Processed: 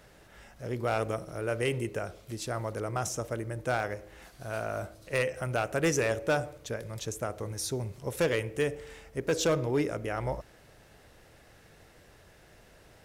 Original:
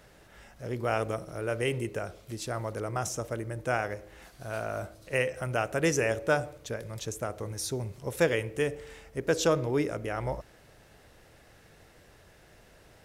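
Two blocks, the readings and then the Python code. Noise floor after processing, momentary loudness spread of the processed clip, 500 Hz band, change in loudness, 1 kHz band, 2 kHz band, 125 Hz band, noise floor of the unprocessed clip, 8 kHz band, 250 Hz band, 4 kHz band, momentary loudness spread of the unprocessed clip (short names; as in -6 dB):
-57 dBFS, 11 LU, -0.5 dB, -0.5 dB, -0.5 dB, -1.5 dB, 0.0 dB, -57 dBFS, 0.0 dB, -0.5 dB, 0.0 dB, 12 LU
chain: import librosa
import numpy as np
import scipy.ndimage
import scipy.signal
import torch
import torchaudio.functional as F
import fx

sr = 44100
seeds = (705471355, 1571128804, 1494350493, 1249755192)

y = np.clip(10.0 ** (20.5 / 20.0) * x, -1.0, 1.0) / 10.0 ** (20.5 / 20.0)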